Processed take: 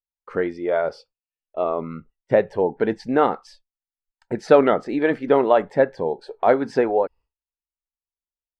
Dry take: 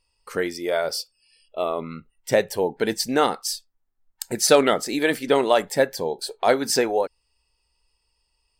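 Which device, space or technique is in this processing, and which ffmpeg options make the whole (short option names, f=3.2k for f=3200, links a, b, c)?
hearing-loss simulation: -af "lowpass=1.5k,agate=range=-33dB:threshold=-44dB:ratio=3:detection=peak,volume=2.5dB"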